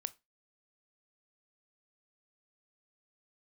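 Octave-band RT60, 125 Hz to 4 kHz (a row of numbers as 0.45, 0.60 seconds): 0.30, 0.25, 0.25, 0.20, 0.20, 0.20 seconds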